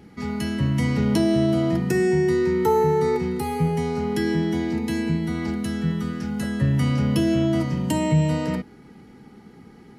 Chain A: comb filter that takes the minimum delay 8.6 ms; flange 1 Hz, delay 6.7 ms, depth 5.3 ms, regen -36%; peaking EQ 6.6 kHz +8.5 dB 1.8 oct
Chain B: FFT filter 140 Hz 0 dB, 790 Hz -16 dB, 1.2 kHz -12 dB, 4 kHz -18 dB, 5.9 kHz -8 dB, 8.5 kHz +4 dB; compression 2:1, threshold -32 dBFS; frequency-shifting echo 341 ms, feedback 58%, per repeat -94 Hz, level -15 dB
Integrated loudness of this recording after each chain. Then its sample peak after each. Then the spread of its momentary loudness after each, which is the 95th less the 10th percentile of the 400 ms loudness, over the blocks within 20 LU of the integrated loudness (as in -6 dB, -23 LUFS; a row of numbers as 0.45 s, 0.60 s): -27.5 LUFS, -32.0 LUFS; -12.0 dBFS, -19.0 dBFS; 8 LU, 11 LU